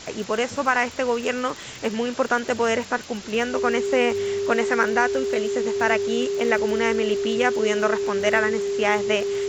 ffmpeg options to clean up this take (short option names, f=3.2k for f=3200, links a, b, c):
-af "adeclick=t=4,bandreject=f=400:w=30,afwtdn=0.014"